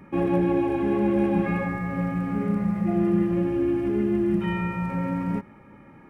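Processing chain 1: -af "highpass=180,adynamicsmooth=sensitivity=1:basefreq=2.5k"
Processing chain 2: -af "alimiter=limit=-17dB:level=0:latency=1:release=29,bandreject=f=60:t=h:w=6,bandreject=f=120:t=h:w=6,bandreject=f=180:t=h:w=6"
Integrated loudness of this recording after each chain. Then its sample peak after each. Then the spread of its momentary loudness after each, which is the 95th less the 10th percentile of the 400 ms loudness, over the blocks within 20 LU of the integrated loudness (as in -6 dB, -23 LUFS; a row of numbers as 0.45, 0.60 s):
-26.0, -26.5 LUFS; -12.0, -16.0 dBFS; 7, 6 LU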